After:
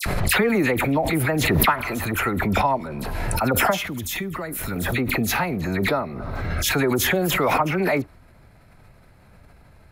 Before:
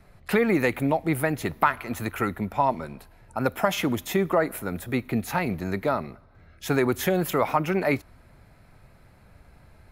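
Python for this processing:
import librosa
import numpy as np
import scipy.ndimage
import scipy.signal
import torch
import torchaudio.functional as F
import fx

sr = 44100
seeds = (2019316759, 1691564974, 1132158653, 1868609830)

y = fx.dispersion(x, sr, late='lows', ms=59.0, hz=1900.0)
y = fx.peak_eq(y, sr, hz=640.0, db=-13.5, octaves=2.9, at=(3.86, 4.76))
y = fx.pre_swell(y, sr, db_per_s=20.0)
y = y * librosa.db_to_amplitude(1.0)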